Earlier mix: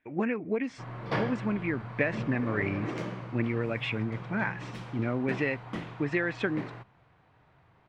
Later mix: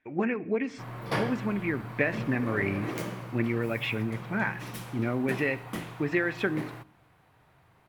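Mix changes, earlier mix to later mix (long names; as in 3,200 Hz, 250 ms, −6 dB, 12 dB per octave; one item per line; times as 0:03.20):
background: remove high-frequency loss of the air 130 metres
reverb: on, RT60 0.65 s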